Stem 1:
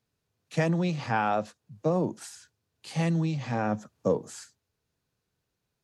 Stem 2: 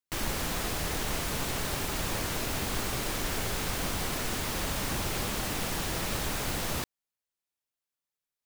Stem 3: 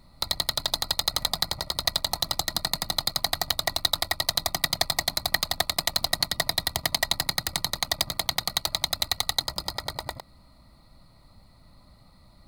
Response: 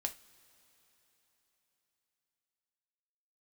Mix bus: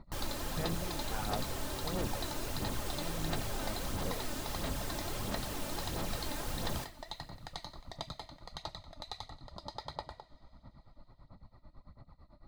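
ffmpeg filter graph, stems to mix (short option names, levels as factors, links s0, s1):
-filter_complex "[0:a]volume=0.141[s0];[1:a]volume=0.562,asplit=2[s1][s2];[s2]volume=0.596[s3];[2:a]lowpass=4600,acompressor=threshold=0.0447:ratio=6,tremolo=f=9:d=0.96,volume=0.794,asplit=2[s4][s5];[s5]volume=0.335[s6];[s1][s4]amix=inputs=2:normalize=0,lowpass=f=2300:w=0.5412,lowpass=f=2300:w=1.3066,acompressor=threshold=0.00501:ratio=6,volume=1[s7];[3:a]atrim=start_sample=2205[s8];[s3][s6]amix=inputs=2:normalize=0[s9];[s9][s8]afir=irnorm=-1:irlink=0[s10];[s0][s7][s10]amix=inputs=3:normalize=0,aphaser=in_gain=1:out_gain=1:delay=3.4:decay=0.41:speed=1.5:type=sinusoidal"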